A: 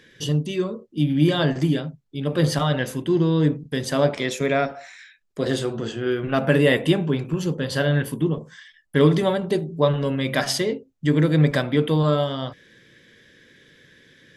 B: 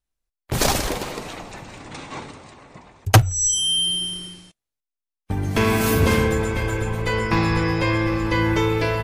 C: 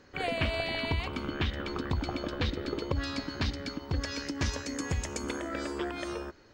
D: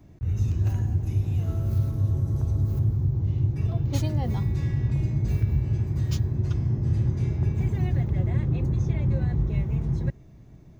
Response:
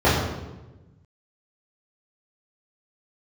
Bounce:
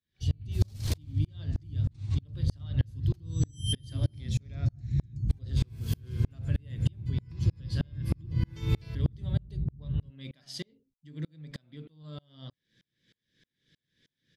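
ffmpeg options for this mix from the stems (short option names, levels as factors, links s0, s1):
-filter_complex "[0:a]highshelf=f=8100:g=-8,acompressor=threshold=0.1:ratio=6,volume=0.531,asplit=2[s0][s1];[1:a]volume=0.708[s2];[2:a]volume=0.112[s3];[3:a]lowpass=1400,afwtdn=0.0631,volume=1.33[s4];[s1]apad=whole_len=398240[s5];[s2][s5]sidechaincompress=threshold=0.00447:ratio=8:attack=28:release=112[s6];[s0][s6][s3][s4]amix=inputs=4:normalize=0,firequalizer=gain_entry='entry(130,0);entry(430,-11);entry(880,-13);entry(4300,4);entry(6700,-1)':delay=0.05:min_phase=1,aeval=exprs='val(0)*pow(10,-35*if(lt(mod(-3.2*n/s,1),2*abs(-3.2)/1000),1-mod(-3.2*n/s,1)/(2*abs(-3.2)/1000),(mod(-3.2*n/s,1)-2*abs(-3.2)/1000)/(1-2*abs(-3.2)/1000))/20)':c=same"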